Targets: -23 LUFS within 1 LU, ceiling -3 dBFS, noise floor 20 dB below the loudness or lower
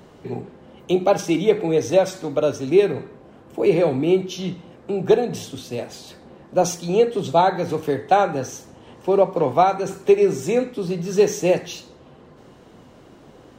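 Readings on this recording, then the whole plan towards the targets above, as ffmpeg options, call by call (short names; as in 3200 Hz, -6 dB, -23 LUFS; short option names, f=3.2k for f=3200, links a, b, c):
loudness -20.5 LUFS; peak -5.0 dBFS; loudness target -23.0 LUFS
-> -af "volume=-2.5dB"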